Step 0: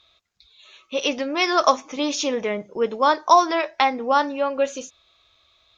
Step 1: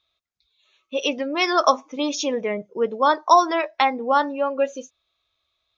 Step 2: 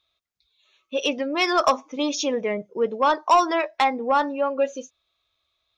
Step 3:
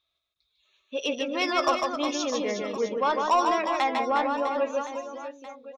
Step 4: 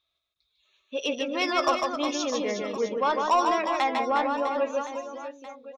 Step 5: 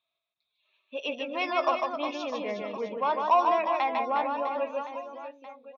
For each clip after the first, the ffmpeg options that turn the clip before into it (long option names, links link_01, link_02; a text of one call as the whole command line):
ffmpeg -i in.wav -af "afftdn=noise_reduction=14:noise_floor=-30" out.wav
ffmpeg -i in.wav -af "asoftclip=type=tanh:threshold=-9dB" out.wav
ffmpeg -i in.wav -af "aecho=1:1:150|360|654|1066|1642:0.631|0.398|0.251|0.158|0.1,volume=-5.5dB" out.wav
ffmpeg -i in.wav -af anull out.wav
ffmpeg -i in.wav -af "highpass=frequency=100:width=0.5412,highpass=frequency=100:width=1.3066,equalizer=frequency=200:width_type=q:width=4:gain=4,equalizer=frequency=670:width_type=q:width=4:gain=9,equalizer=frequency=980:width_type=q:width=4:gain=8,equalizer=frequency=2500:width_type=q:width=4:gain=8,lowpass=frequency=4600:width=0.5412,lowpass=frequency=4600:width=1.3066,volume=-7.5dB" out.wav